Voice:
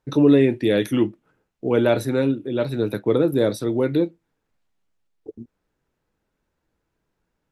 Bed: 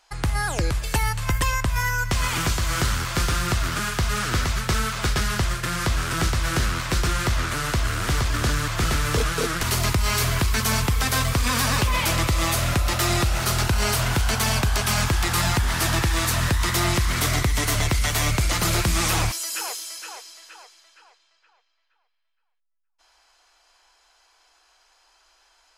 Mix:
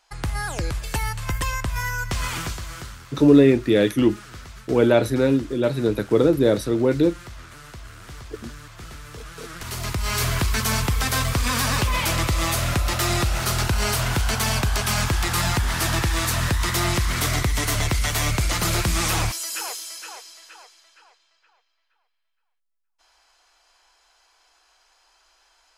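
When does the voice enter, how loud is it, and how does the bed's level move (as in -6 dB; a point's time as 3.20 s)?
3.05 s, +1.5 dB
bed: 2.32 s -3 dB
2.99 s -17 dB
9.17 s -17 dB
10.23 s -0.5 dB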